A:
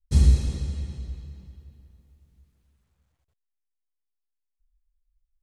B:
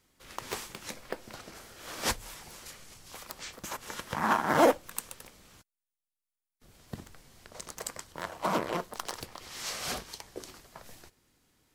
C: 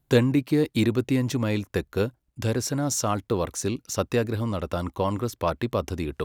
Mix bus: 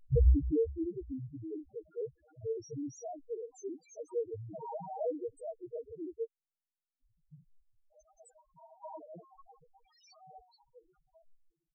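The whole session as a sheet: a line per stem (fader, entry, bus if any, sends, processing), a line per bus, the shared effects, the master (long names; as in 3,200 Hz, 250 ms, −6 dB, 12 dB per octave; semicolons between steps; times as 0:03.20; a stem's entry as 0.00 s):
+3.0 dB, 0.00 s, no send, upward compression, threshold −49 dBFS; automatic ducking −10 dB, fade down 1.35 s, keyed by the third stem
−5.5 dB, 0.40 s, no send, parametric band 740 Hz +5 dB 0.64 octaves; hum removal 66.85 Hz, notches 33
−8.5 dB, 0.00 s, no send, hollow resonant body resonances 420/690/980/1,900 Hz, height 11 dB, ringing for 25 ms; sample-and-hold tremolo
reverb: not used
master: comb filter 6.4 ms, depth 47%; spectral peaks only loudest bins 1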